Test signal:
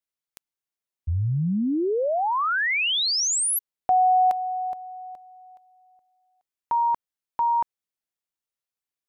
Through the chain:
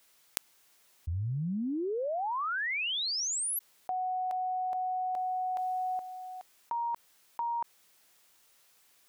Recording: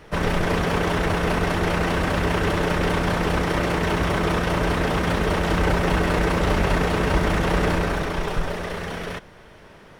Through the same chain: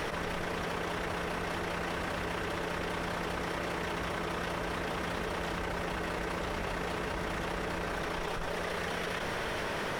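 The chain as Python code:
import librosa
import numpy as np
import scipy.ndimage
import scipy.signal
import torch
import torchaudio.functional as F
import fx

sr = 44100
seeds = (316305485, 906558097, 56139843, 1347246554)

y = fx.low_shelf(x, sr, hz=290.0, db=-8.0)
y = fx.env_flatten(y, sr, amount_pct=100)
y = y * librosa.db_to_amplitude(-13.5)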